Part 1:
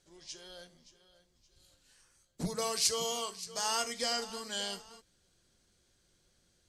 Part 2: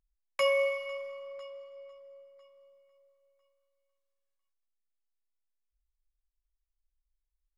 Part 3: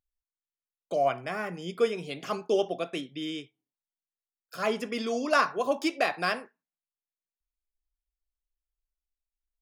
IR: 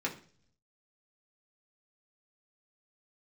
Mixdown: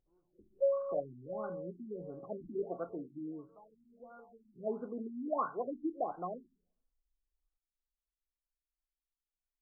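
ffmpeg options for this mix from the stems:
-filter_complex "[0:a]volume=-18dB,asplit=3[link_01][link_02][link_03];[link_02]volume=-15dB[link_04];[link_03]volume=-7.5dB[link_05];[1:a]volume=-2dB,asplit=2[link_06][link_07];[link_07]volume=-9.5dB[link_08];[2:a]volume=-8.5dB,asplit=2[link_09][link_10];[link_10]volume=-17.5dB[link_11];[3:a]atrim=start_sample=2205[link_12];[link_04][link_08][link_11]amix=inputs=3:normalize=0[link_13];[link_13][link_12]afir=irnorm=-1:irlink=0[link_14];[link_05]aecho=0:1:154:1[link_15];[link_01][link_06][link_09][link_14][link_15]amix=inputs=5:normalize=0,afftfilt=real='re*lt(b*sr/1024,340*pow(1600/340,0.5+0.5*sin(2*PI*1.5*pts/sr)))':imag='im*lt(b*sr/1024,340*pow(1600/340,0.5+0.5*sin(2*PI*1.5*pts/sr)))':win_size=1024:overlap=0.75"

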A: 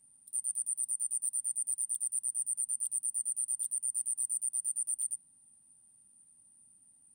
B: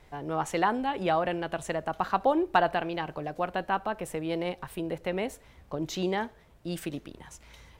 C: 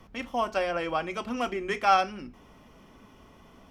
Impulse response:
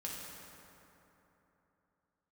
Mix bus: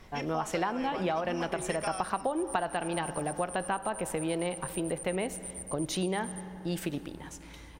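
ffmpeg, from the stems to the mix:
-filter_complex "[0:a]bandpass=frequency=4400:width_type=q:width=1.7:csg=0,crystalizer=i=1:c=0,adelay=1250,volume=-4dB[link_01];[1:a]volume=1dB,asplit=2[link_02][link_03];[link_03]volume=-12.5dB[link_04];[2:a]equalizer=frequency=5400:width=6:gain=11.5,acompressor=threshold=-29dB:ratio=6,volume=-3.5dB[link_05];[3:a]atrim=start_sample=2205[link_06];[link_04][link_06]afir=irnorm=-1:irlink=0[link_07];[link_01][link_02][link_05][link_07]amix=inputs=4:normalize=0,acompressor=threshold=-27dB:ratio=6"

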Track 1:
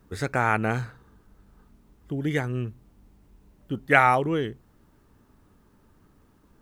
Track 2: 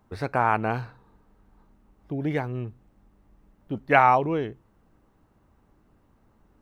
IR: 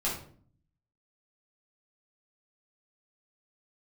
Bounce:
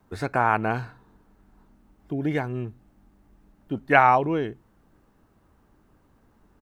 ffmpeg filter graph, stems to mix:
-filter_complex "[0:a]highpass=200,volume=-7dB[link_01];[1:a]equalizer=frequency=1600:width_type=o:width=0.27:gain=3,adelay=3.2,volume=0.5dB,asplit=2[link_02][link_03];[link_03]apad=whole_len=291536[link_04];[link_01][link_04]sidechaincompress=threshold=-28dB:ratio=8:attack=16:release=206[link_05];[link_05][link_02]amix=inputs=2:normalize=0"

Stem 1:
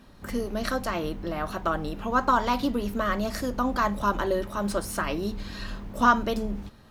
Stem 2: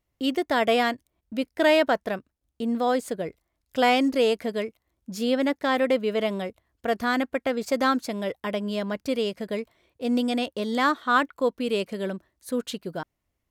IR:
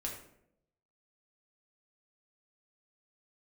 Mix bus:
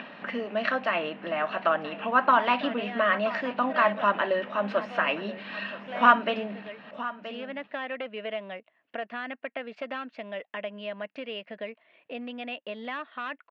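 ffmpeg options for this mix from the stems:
-filter_complex "[0:a]volume=1.5dB,asplit=2[link_01][link_02];[link_02]volume=-16.5dB[link_03];[1:a]volume=18.5dB,asoftclip=hard,volume=-18.5dB,adelay=2100,volume=-15.5dB[link_04];[link_03]aecho=0:1:976:1[link_05];[link_01][link_04][link_05]amix=inputs=3:normalize=0,equalizer=frequency=390:width=1.4:gain=-11.5,acompressor=mode=upward:threshold=-30dB:ratio=2.5,highpass=frequency=220:width=0.5412,highpass=frequency=220:width=1.3066,equalizer=frequency=440:width_type=q:width=4:gain=5,equalizer=frequency=630:width_type=q:width=4:gain=8,equalizer=frequency=1800:width_type=q:width=4:gain=6,equalizer=frequency=2700:width_type=q:width=4:gain=10,lowpass=frequency=3100:width=0.5412,lowpass=frequency=3100:width=1.3066"

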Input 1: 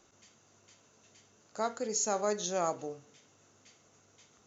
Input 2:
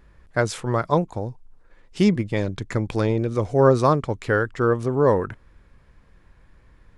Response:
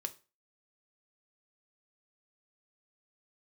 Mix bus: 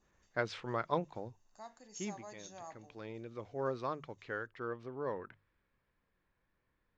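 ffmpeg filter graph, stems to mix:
-filter_complex "[0:a]aecho=1:1:1.1:0.63,volume=-20dB,asplit=3[link_01][link_02][link_03];[link_02]volume=-9.5dB[link_04];[1:a]bandreject=frequency=50:width_type=h:width=6,bandreject=frequency=100:width_type=h:width=6,bandreject=frequency=150:width_type=h:width=6,adynamicequalizer=threshold=0.0158:dfrequency=2500:dqfactor=0.75:tfrequency=2500:tqfactor=0.75:attack=5:release=100:ratio=0.375:range=3:mode=boostabove:tftype=bell,lowpass=frequency=5000:width=0.5412,lowpass=frequency=5000:width=1.3066,volume=-14dB,afade=type=out:start_time=2.03:duration=0.29:silence=0.446684,asplit=2[link_05][link_06];[link_06]volume=-20dB[link_07];[link_03]apad=whole_len=307783[link_08];[link_05][link_08]sidechaincompress=threshold=-54dB:ratio=8:attack=5.4:release=711[link_09];[2:a]atrim=start_sample=2205[link_10];[link_04][link_07]amix=inputs=2:normalize=0[link_11];[link_11][link_10]afir=irnorm=-1:irlink=0[link_12];[link_01][link_09][link_12]amix=inputs=3:normalize=0,lowshelf=frequency=110:gain=-12"

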